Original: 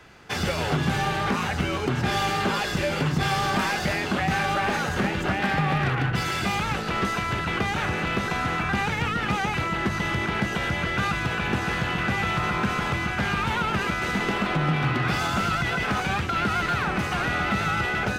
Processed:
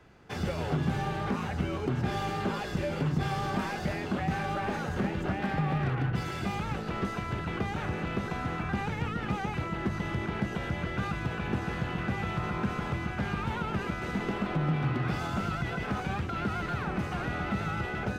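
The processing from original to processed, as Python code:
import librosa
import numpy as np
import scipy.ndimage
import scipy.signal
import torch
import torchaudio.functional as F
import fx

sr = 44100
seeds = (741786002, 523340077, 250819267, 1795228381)

y = fx.tilt_shelf(x, sr, db=5.0, hz=970.0)
y = F.gain(torch.from_numpy(y), -8.5).numpy()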